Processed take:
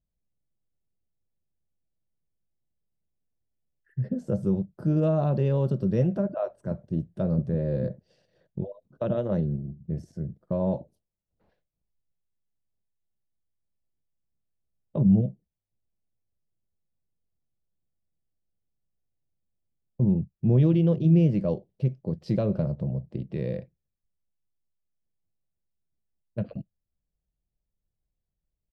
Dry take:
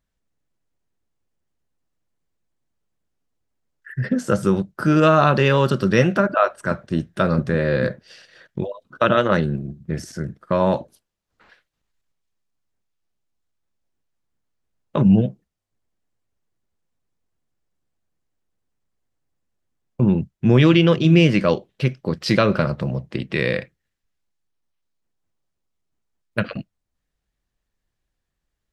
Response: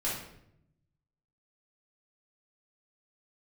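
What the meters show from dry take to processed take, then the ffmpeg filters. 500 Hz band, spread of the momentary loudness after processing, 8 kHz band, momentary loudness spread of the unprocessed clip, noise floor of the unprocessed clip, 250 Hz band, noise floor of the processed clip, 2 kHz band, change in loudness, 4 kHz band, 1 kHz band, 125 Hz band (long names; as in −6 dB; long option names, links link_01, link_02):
−9.5 dB, 14 LU, can't be measured, 15 LU, −79 dBFS, −6.5 dB, −84 dBFS, below −25 dB, −7.0 dB, below −20 dB, −19.0 dB, −4.0 dB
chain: -af "firequalizer=gain_entry='entry(180,0);entry(250,-6);entry(630,-5);entry(1300,-24);entry(4300,-20)':delay=0.05:min_phase=1,volume=-4dB"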